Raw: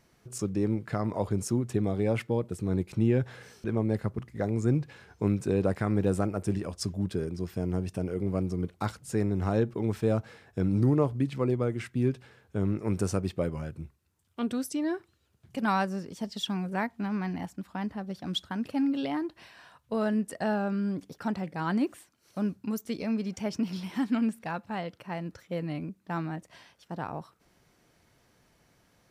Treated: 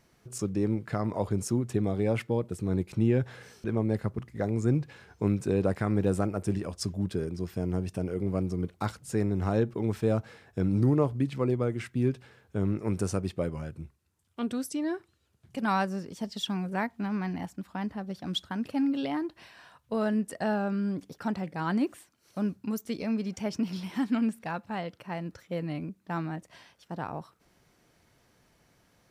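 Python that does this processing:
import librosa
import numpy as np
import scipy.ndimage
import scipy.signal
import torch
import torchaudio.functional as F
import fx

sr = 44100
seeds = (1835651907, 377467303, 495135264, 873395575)

y = fx.cheby1_lowpass(x, sr, hz=12000.0, order=2, at=(12.9, 15.71))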